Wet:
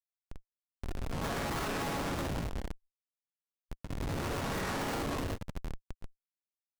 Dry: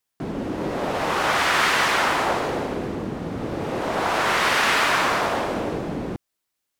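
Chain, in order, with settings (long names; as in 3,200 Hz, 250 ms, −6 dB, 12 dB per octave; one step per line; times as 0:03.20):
resonators tuned to a chord F#2 major, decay 0.45 s
comparator with hysteresis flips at −32 dBFS
granular cloud 142 ms, grains 16 per second
level +5.5 dB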